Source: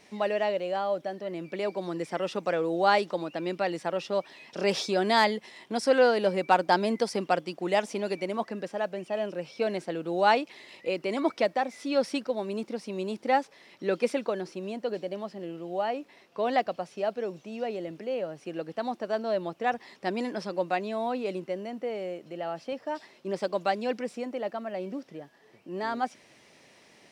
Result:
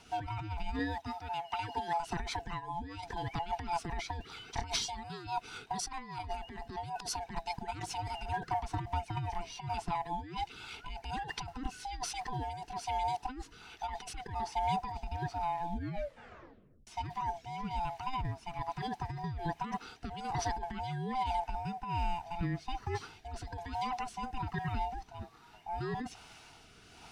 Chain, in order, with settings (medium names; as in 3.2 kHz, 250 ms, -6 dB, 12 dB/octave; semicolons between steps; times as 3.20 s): split-band scrambler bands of 500 Hz; 0.79–2.00 s: high-pass 470 Hz 6 dB/octave; compressor with a negative ratio -34 dBFS, ratio -1; 15.74 s: tape stop 1.13 s; rotary cabinet horn 5 Hz, later 1.2 Hz, at 10.07 s